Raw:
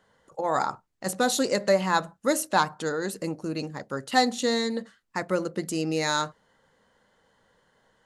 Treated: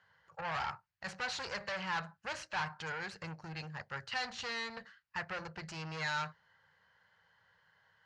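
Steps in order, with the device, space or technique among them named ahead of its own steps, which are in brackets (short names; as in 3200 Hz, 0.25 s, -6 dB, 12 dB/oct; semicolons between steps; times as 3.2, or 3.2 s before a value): scooped metal amplifier (tube stage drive 30 dB, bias 0.55; speaker cabinet 78–4400 Hz, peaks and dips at 99 Hz +9 dB, 160 Hz +8 dB, 350 Hz +5 dB, 880 Hz +3 dB, 1600 Hz +5 dB, 3600 Hz -9 dB; passive tone stack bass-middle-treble 10-0-10); gain +5 dB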